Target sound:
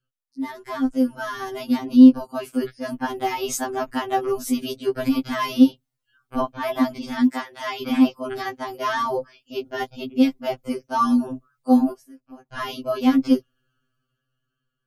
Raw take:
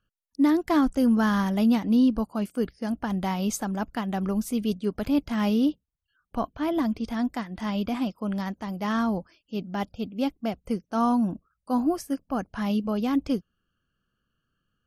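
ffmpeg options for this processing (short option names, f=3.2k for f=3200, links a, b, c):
-filter_complex "[0:a]dynaudnorm=f=360:g=9:m=14dB,asplit=3[a][b][c];[a]afade=t=out:st=7.26:d=0.02[d];[b]highpass=f=510:p=1,afade=t=in:st=7.26:d=0.02,afade=t=out:st=7.81:d=0.02[e];[c]afade=t=in:st=7.81:d=0.02[f];[d][e][f]amix=inputs=3:normalize=0,asplit=3[g][h][i];[g]afade=t=out:st=11.91:d=0.02[j];[h]acompressor=threshold=-37dB:ratio=12,afade=t=in:st=11.91:d=0.02,afade=t=out:st=12.5:d=0.02[k];[i]afade=t=in:st=12.5:d=0.02[l];[j][k][l]amix=inputs=3:normalize=0,afftfilt=real='re*2.45*eq(mod(b,6),0)':imag='im*2.45*eq(mod(b,6),0)':win_size=2048:overlap=0.75,volume=-2.5dB"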